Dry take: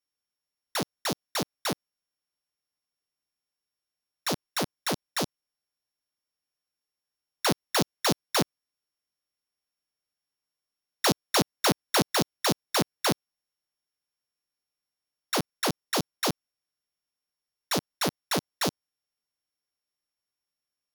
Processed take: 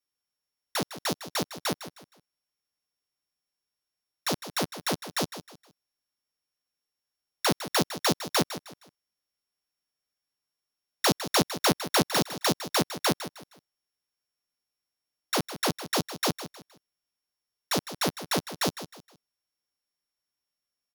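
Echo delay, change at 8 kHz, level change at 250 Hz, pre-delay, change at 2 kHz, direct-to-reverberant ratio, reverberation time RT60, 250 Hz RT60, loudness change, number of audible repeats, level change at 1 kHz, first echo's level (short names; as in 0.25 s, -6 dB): 0.156 s, +0.5 dB, +0.5 dB, none, +0.5 dB, none, none, none, 0.0 dB, 3, +0.5 dB, -12.5 dB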